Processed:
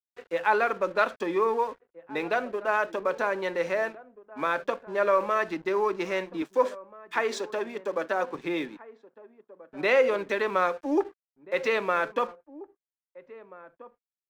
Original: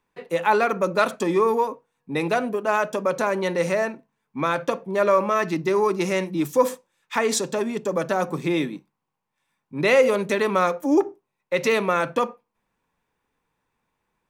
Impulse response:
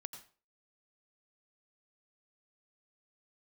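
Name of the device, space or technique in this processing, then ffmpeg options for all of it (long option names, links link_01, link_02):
pocket radio on a weak battery: -filter_complex "[0:a]highpass=310,lowpass=3900,aeval=exprs='sgn(val(0))*max(abs(val(0))-0.00473,0)':channel_layout=same,equalizer=frequency=1600:width_type=o:width=0.27:gain=5,asettb=1/sr,asplit=3[link_01][link_02][link_03];[link_01]atrim=end=6.424[link_04];[link_02]atrim=start=6.42:end=8.35,asetpts=PTS-STARTPTS,afade=type=in:duration=0.004:curve=qsin,afade=type=out:start_time=1.926:duration=0.004:curve=qsin,highpass=210[link_05];[link_03]atrim=start=8.346[link_06];[link_04][link_05]acrossfade=duration=0.004:curve1=hsin:curve2=qsin[link_07];[link_07][link_06]acrossfade=duration=0.004:curve1=qsin:curve2=hsin,asplit=2[link_08][link_09];[link_09]adelay=1633,volume=-18dB,highshelf=frequency=4000:gain=-36.7[link_10];[link_08][link_10]amix=inputs=2:normalize=0,volume=-4dB"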